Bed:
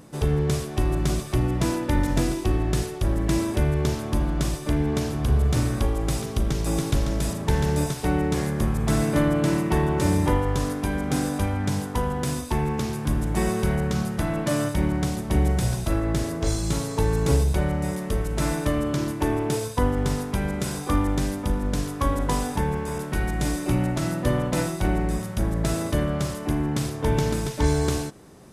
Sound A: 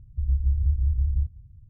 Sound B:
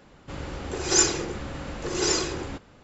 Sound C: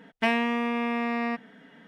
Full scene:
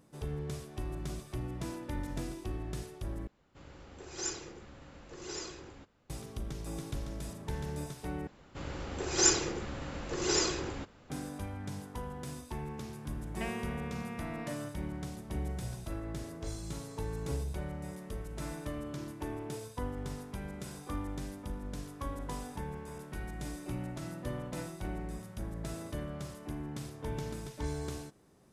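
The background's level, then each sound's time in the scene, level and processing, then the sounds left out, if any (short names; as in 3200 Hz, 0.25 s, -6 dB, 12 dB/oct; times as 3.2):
bed -15.5 dB
3.27 replace with B -17 dB
8.27 replace with B -5 dB
13.18 add C -15.5 dB
not used: A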